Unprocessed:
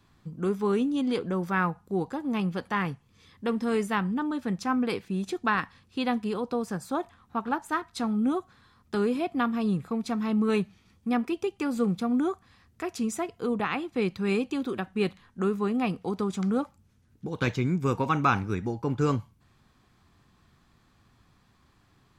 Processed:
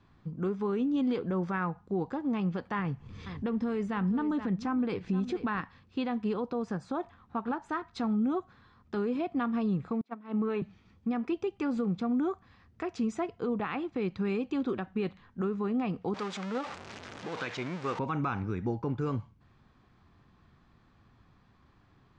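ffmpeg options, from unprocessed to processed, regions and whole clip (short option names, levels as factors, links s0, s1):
-filter_complex "[0:a]asettb=1/sr,asplit=3[s0][s1][s2];[s0]atrim=end=2.794[s3];[s1]atrim=start=2.79:end=5.61,asetpts=PTS-STARTPTS,afade=t=in:d=0.004:c=qsin,afade=t=out:st=2.816:d=0.004:c=qsin,lowshelf=f=170:g=7.5,acompressor=mode=upward:threshold=0.0224:ratio=2.5:attack=3.2:release=140:knee=2.83:detection=peak,aecho=1:1:473:0.158,atrim=end_sample=124362[s4];[s2]atrim=start=5.606[s5];[s3][s4]acrossfade=d=0.004:c1=hsin:c2=qsin[s6];[s6][s5]acrossfade=d=0.004:c1=qsin:c2=hsin,asettb=1/sr,asplit=3[s7][s8][s9];[s7]atrim=end=10.014[s10];[s8]atrim=start=10.01:end=10.62,asetpts=PTS-STARTPTS,afade=t=in:d=0.004:c=qsin,afade=t=out:st=0.606:d=0.004:c=qsin,agate=range=0.0562:threshold=0.0447:ratio=16:release=100:detection=peak,acrossover=split=210 3300:gain=0.0891 1 0.251[s11][s12][s13];[s11][s12][s13]amix=inputs=3:normalize=0[s14];[s9]atrim=start=10.616[s15];[s10][s14]acrossfade=d=0.004:c1=hsin:c2=qsin[s16];[s16][s15]acrossfade=d=0.004:c1=qsin:c2=hsin,asettb=1/sr,asplit=3[s17][s18][s19];[s17]atrim=end=16.144[s20];[s18]atrim=start=16.14:end=17.99,asetpts=PTS-STARTPTS,afade=t=in:d=0.004:c=qsin,afade=t=out:st=1.846:d=0.004:c=qsin,aeval=exprs='val(0)+0.5*0.0376*sgn(val(0))':c=same,highpass=f=970:p=1[s21];[s19]atrim=start=17.986[s22];[s20][s21]acrossfade=d=0.004:c1=hsin:c2=qsin[s23];[s23][s22]acrossfade=d=0.004:c1=qsin:c2=hsin,lowpass=f=7300:w=0.5412,lowpass=f=7300:w=1.3066,aemphasis=mode=reproduction:type=75fm,alimiter=limit=0.0708:level=0:latency=1:release=146"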